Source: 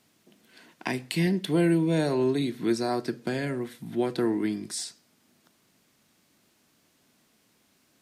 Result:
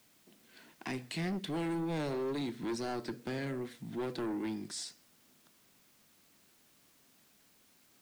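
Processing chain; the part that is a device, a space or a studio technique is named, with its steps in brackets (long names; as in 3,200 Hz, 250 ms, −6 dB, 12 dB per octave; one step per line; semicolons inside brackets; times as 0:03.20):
compact cassette (soft clipping −27.5 dBFS, distortion −8 dB; low-pass filter 8,600 Hz; tape wow and flutter; white noise bed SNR 28 dB)
level −4.5 dB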